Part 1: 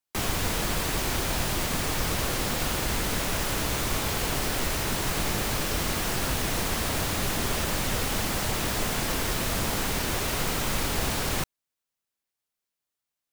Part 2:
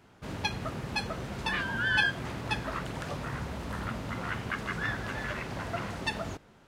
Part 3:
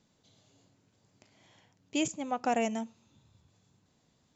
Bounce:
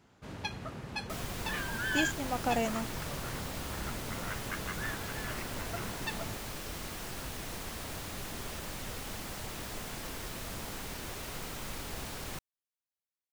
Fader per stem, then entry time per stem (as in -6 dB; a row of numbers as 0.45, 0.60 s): -13.0, -6.0, -2.0 dB; 0.95, 0.00, 0.00 s